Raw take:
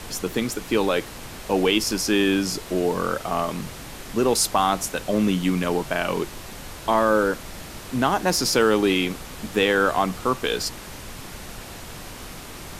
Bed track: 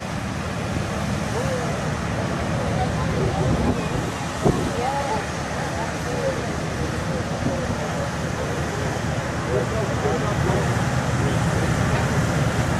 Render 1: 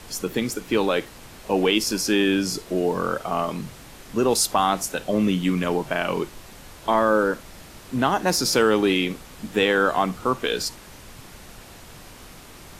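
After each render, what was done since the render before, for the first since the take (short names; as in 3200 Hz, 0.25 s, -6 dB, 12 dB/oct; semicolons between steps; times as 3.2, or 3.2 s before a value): noise print and reduce 6 dB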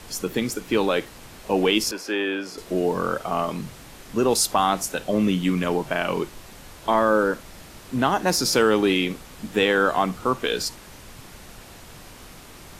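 1.91–2.58 three-band isolator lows -20 dB, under 350 Hz, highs -14 dB, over 3000 Hz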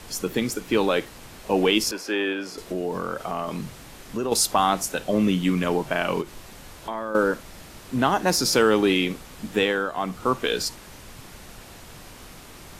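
2.32–4.32 compressor 2.5:1, threshold -25 dBFS; 6.21–7.15 compressor 2.5:1, threshold -31 dBFS; 9.53–10.28 dip -9 dB, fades 0.36 s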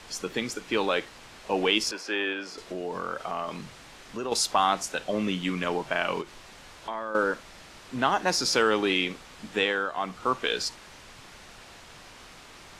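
Bessel low-pass 5700 Hz, order 2; low shelf 490 Hz -10 dB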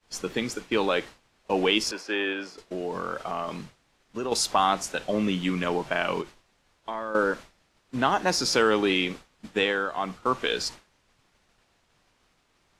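expander -35 dBFS; low shelf 490 Hz +3.5 dB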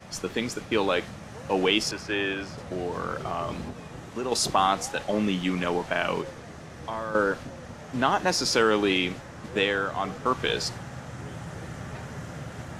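add bed track -17 dB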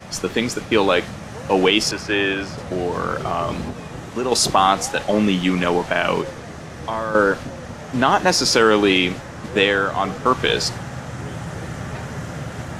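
gain +8 dB; limiter -3 dBFS, peak gain reduction 3 dB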